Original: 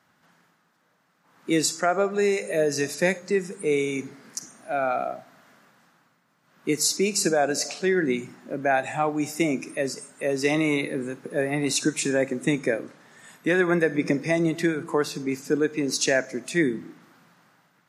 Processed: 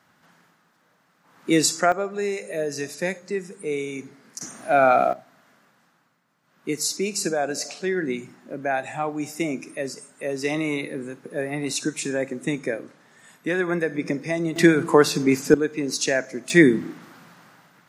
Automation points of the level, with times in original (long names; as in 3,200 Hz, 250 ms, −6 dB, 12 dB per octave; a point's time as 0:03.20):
+3.5 dB
from 0:01.92 −4 dB
from 0:04.41 +8.5 dB
from 0:05.13 −2.5 dB
from 0:14.56 +8.5 dB
from 0:15.54 −0.5 dB
from 0:16.50 +8.5 dB